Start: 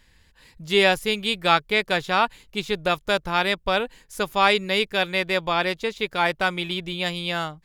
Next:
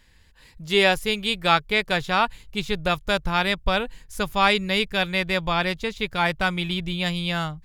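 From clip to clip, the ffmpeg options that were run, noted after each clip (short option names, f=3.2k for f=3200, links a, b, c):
-af "asubboost=boost=4.5:cutoff=160"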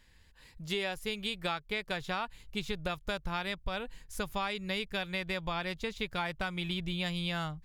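-af "acompressor=threshold=-25dB:ratio=10,volume=-5.5dB"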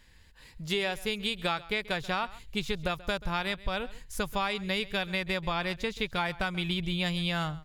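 -af "aecho=1:1:134:0.106,volume=4dB"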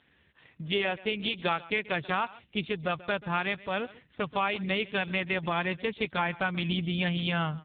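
-af "volume=3dB" -ar 8000 -c:a libopencore_amrnb -b:a 5900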